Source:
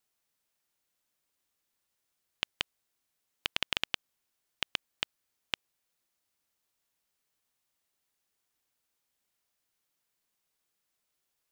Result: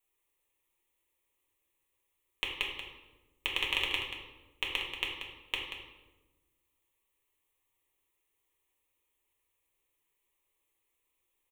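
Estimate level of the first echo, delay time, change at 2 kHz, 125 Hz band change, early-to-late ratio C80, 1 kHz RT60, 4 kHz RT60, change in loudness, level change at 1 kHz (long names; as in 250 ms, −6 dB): −8.5 dB, 184 ms, +3.5 dB, +1.5 dB, 4.5 dB, 1.0 s, 0.75 s, +1.5 dB, +1.5 dB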